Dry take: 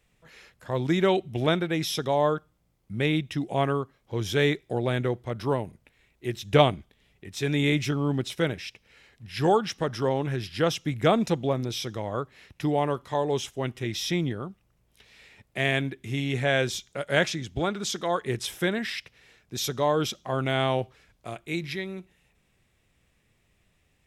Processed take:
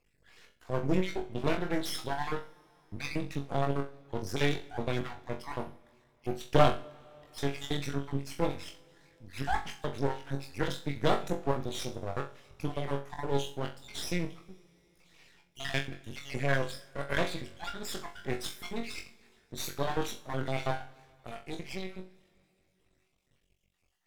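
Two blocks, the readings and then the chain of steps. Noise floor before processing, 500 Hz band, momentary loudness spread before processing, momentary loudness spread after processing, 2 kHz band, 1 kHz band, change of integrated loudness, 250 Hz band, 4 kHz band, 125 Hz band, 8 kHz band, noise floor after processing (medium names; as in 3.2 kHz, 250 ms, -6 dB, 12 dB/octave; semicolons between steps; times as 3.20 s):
-69 dBFS, -8.0 dB, 12 LU, 13 LU, -7.0 dB, -6.0 dB, -7.5 dB, -8.0 dB, -8.0 dB, -7.0 dB, -7.0 dB, -73 dBFS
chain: random holes in the spectrogram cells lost 54%; flutter echo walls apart 3.7 m, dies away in 0.28 s; half-wave rectifier; two-slope reverb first 0.58 s, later 3.5 s, from -15 dB, DRR 14.5 dB; trim -2 dB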